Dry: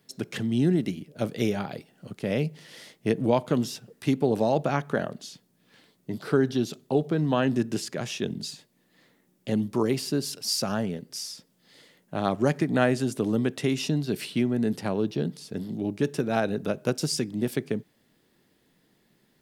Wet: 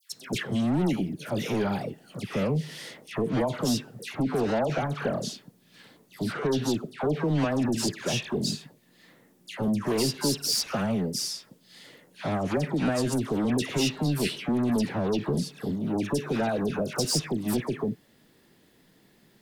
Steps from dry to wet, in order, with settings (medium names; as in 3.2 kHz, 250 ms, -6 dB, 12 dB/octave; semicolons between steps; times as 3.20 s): peak limiter -16.5 dBFS, peak gain reduction 9 dB; saturation -26.5 dBFS, distortion -9 dB; phase dispersion lows, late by 126 ms, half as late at 1.5 kHz; trim +5.5 dB